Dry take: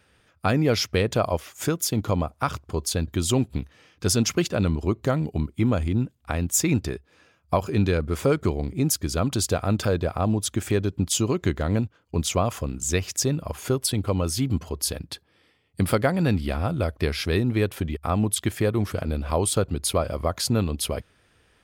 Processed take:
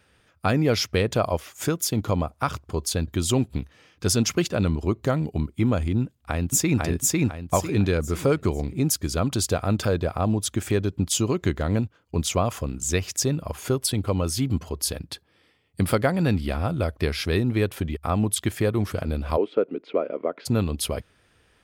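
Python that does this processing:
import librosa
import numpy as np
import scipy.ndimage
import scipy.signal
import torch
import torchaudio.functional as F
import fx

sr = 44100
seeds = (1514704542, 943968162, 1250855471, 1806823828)

y = fx.echo_throw(x, sr, start_s=6.02, length_s=0.78, ms=500, feedback_pct=35, wet_db=-0.5)
y = fx.cabinet(y, sr, low_hz=250.0, low_slope=24, high_hz=2300.0, hz=(290.0, 440.0, 800.0, 1100.0, 1700.0), db=(3, 6, -7, -8, -7), at=(19.36, 20.45), fade=0.02)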